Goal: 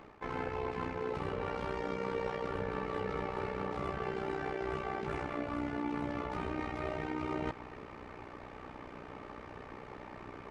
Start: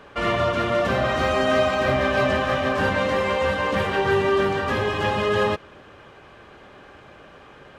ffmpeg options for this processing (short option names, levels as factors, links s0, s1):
-af "areverse,acompressor=threshold=0.0158:ratio=4,areverse,tremolo=f=83:d=0.75,asetrate=32667,aresample=44100,volume=1.26"